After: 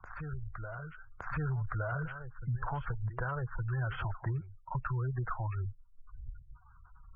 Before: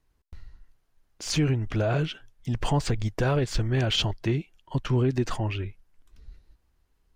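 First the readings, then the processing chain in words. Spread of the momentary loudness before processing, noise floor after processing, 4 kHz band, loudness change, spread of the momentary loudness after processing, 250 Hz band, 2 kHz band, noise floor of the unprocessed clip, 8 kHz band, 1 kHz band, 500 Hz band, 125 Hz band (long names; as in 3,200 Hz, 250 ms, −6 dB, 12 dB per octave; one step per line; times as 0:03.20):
9 LU, −59 dBFS, below −25 dB, −10.0 dB, 12 LU, −15.5 dB, −5.0 dB, −70 dBFS, below −40 dB, −4.5 dB, −15.0 dB, −7.5 dB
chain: adaptive Wiener filter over 15 samples
drawn EQ curve 130 Hz 0 dB, 260 Hz −19 dB, 1,400 Hz +12 dB, 3,600 Hz −24 dB
soft clipping −19 dBFS, distortion −19 dB
dynamic equaliser 480 Hz, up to +5 dB, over −52 dBFS, Q 5
gate on every frequency bin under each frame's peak −25 dB strong
downward compressor, threshold −28 dBFS, peak gain reduction 6 dB
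backwards echo 1,165 ms −15.5 dB
multiband upward and downward compressor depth 70%
level −3 dB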